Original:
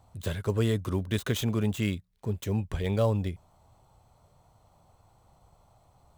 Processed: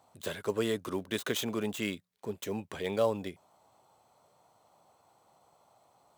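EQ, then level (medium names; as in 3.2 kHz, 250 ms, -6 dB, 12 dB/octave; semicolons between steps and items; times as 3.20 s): high-pass 290 Hz 12 dB/octave; 0.0 dB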